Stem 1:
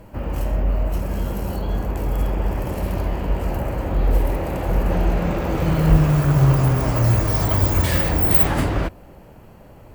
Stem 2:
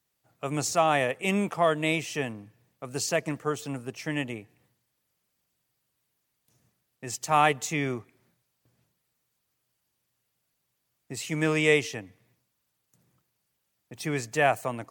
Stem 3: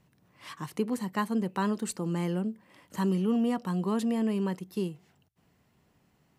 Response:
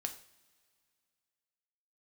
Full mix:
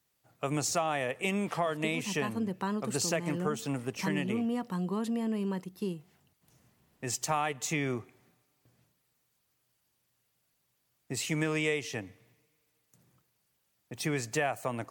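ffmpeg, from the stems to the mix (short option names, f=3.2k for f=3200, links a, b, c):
-filter_complex "[1:a]volume=0.5dB,asplit=2[a][b];[b]volume=-17dB[c];[2:a]adelay=1050,volume=-2.5dB[d];[3:a]atrim=start_sample=2205[e];[c][e]afir=irnorm=-1:irlink=0[f];[a][d][f]amix=inputs=3:normalize=0,acompressor=threshold=-27dB:ratio=6"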